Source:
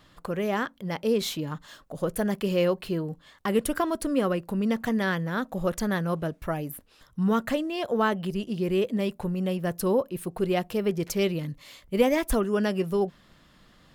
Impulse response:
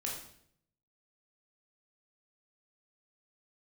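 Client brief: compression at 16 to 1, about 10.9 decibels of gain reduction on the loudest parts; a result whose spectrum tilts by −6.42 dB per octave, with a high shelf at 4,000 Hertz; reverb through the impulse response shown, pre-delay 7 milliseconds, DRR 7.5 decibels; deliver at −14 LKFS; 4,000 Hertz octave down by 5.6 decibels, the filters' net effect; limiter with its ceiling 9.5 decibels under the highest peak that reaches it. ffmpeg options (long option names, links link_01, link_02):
-filter_complex "[0:a]highshelf=frequency=4000:gain=-5,equalizer=frequency=4000:width_type=o:gain=-5,acompressor=threshold=-26dB:ratio=16,alimiter=level_in=2.5dB:limit=-24dB:level=0:latency=1,volume=-2.5dB,asplit=2[link_01][link_02];[1:a]atrim=start_sample=2205,adelay=7[link_03];[link_02][link_03]afir=irnorm=-1:irlink=0,volume=-9dB[link_04];[link_01][link_04]amix=inputs=2:normalize=0,volume=21dB"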